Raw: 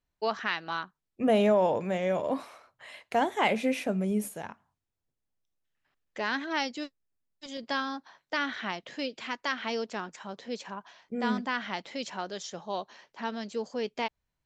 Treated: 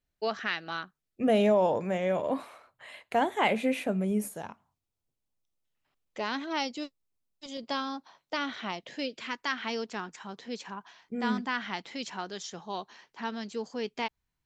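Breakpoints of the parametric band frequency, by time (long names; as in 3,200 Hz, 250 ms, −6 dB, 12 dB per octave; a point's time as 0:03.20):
parametric band −8.5 dB 0.39 octaves
0:01.38 980 Hz
0:02.06 5,500 Hz
0:04.07 5,500 Hz
0:04.50 1,700 Hz
0:08.70 1,700 Hz
0:09.44 580 Hz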